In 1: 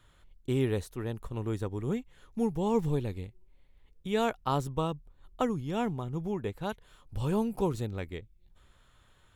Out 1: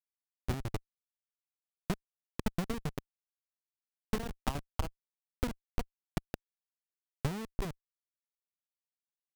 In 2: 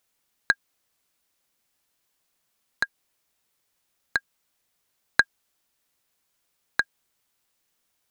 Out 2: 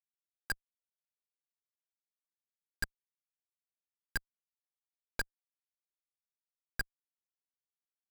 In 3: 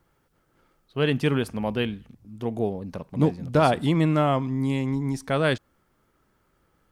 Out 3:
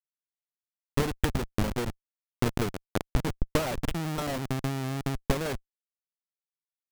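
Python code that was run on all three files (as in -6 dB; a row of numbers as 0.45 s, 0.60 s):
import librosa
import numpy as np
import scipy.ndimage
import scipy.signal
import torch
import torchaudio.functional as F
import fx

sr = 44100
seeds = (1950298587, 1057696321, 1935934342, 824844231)

y = fx.spec_dropout(x, sr, seeds[0], share_pct=31)
y = fx.schmitt(y, sr, flips_db=-27.0)
y = fx.transient(y, sr, attack_db=12, sustain_db=-8)
y = F.gain(torch.from_numpy(y), -4.0).numpy()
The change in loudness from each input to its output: -7.5 LU, -13.5 LU, -6.5 LU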